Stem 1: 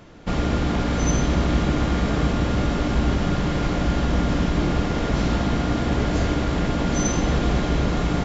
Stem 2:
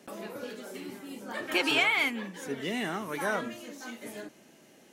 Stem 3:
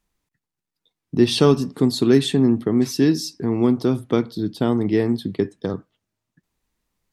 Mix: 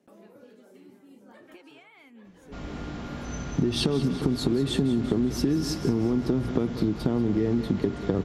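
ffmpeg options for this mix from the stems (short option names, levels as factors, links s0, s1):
-filter_complex "[0:a]flanger=delay=19.5:depth=2.8:speed=0.33,adelay=2250,volume=0.251,asplit=2[s0][s1];[s1]volume=0.596[s2];[1:a]acompressor=threshold=0.02:ratio=12,volume=0.211[s3];[2:a]alimiter=limit=0.266:level=0:latency=1,adelay=2450,volume=1.33,asplit=2[s4][s5];[s5]volume=0.126[s6];[s3][s4]amix=inputs=2:normalize=0,tiltshelf=f=850:g=5.5,acompressor=threshold=0.158:ratio=6,volume=1[s7];[s2][s6]amix=inputs=2:normalize=0,aecho=0:1:187|374|561|748|935|1122|1309:1|0.51|0.26|0.133|0.0677|0.0345|0.0176[s8];[s0][s7][s8]amix=inputs=3:normalize=0,acompressor=threshold=0.1:ratio=6"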